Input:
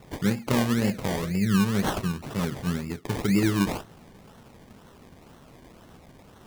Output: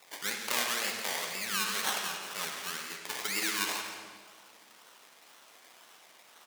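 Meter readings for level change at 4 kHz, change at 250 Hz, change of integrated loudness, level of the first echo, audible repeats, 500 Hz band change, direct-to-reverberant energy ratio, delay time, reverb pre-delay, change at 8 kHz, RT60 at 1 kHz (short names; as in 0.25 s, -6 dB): +3.5 dB, -23.0 dB, -6.0 dB, -11.5 dB, 1, -12.0 dB, 2.0 dB, 0.169 s, 39 ms, +5.0 dB, 1.5 s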